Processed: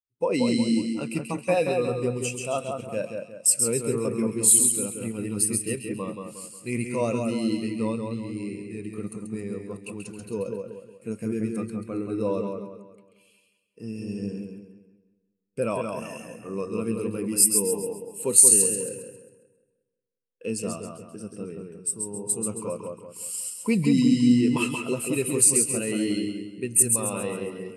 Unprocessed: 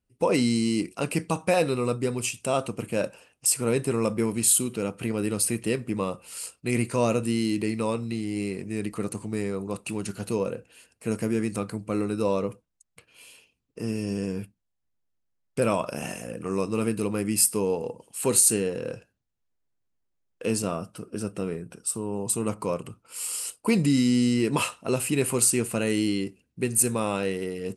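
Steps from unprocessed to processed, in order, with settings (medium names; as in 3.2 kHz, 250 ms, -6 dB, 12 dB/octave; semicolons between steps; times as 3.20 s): tilt shelf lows -3.5 dB, about 1.5 kHz; on a send: two-band feedback delay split 2.3 kHz, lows 180 ms, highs 135 ms, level -3 dB; on the sum: spectral contrast expander 1.5:1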